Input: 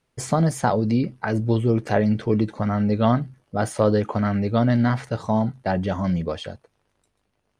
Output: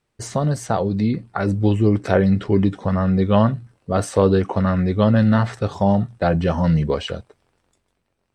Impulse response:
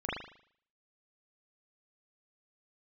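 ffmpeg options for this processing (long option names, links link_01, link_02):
-af "dynaudnorm=framelen=320:gausssize=7:maxgain=11.5dB,asetrate=40131,aresample=44100,volume=-1dB"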